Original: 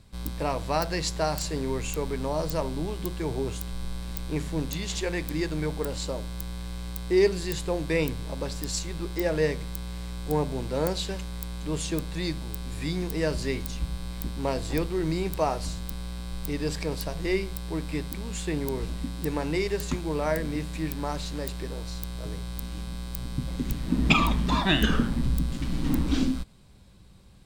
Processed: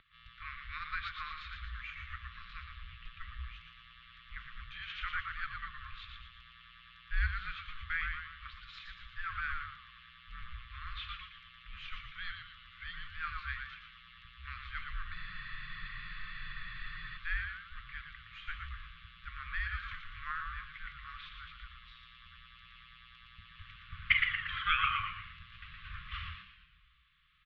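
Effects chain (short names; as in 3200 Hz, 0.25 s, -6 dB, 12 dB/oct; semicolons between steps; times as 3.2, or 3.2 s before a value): upward compressor, threshold -43 dBFS; HPF 70 Hz; on a send: frequency-shifting echo 0.116 s, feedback 51%, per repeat -110 Hz, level -5 dB; on the sum: dynamic EQ 1600 Hz, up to +5 dB, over -42 dBFS, Q 1.1; brick-wall FIR band-stop 410–1400 Hz; mistuned SSB -340 Hz 390–3500 Hz; spectral freeze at 15.17, 2.00 s; gain -5.5 dB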